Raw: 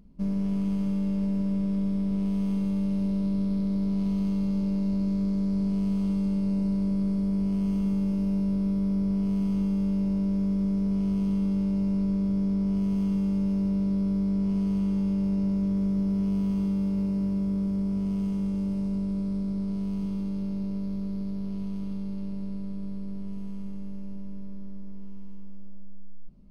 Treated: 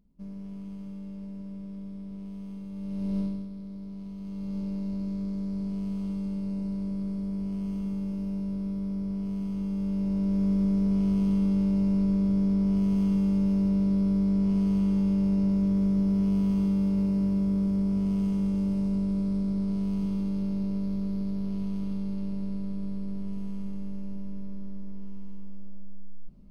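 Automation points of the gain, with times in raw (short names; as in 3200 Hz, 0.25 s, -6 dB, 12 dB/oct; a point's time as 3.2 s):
2.69 s -12.5 dB
3.19 s -0.5 dB
3.5 s -13 dB
4.17 s -13 dB
4.57 s -5.5 dB
9.55 s -5.5 dB
10.49 s +1.5 dB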